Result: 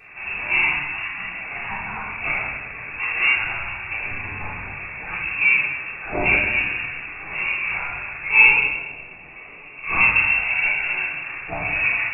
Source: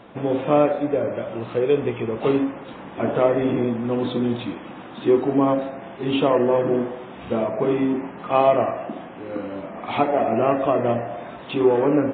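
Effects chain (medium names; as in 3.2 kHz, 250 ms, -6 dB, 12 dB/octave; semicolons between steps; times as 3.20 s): 10.38–11.02 s: compressor with a negative ratio -23 dBFS, ratio -1; steep high-pass 730 Hz 72 dB/octave; frequency inversion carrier 3.4 kHz; 8.49–9.84 s: peaking EQ 1.6 kHz -12.5 dB 1.5 oct; simulated room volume 550 m³, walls mixed, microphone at 3.6 m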